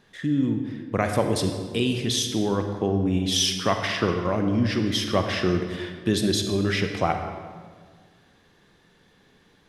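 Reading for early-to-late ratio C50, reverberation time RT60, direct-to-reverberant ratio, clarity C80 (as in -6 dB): 6.0 dB, 1.7 s, 5.0 dB, 7.5 dB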